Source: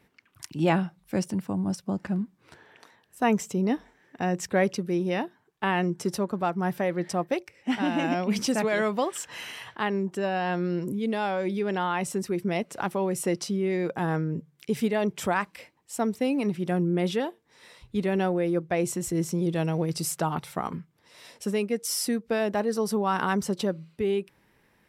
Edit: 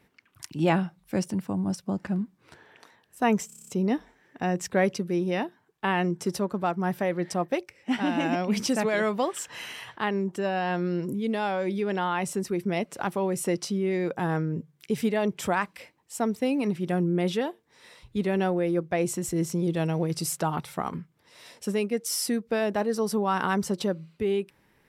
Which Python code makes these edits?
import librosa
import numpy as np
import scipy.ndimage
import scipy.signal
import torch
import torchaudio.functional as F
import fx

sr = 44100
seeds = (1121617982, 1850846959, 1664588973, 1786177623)

y = fx.edit(x, sr, fx.stutter(start_s=3.47, slice_s=0.03, count=8), tone=tone)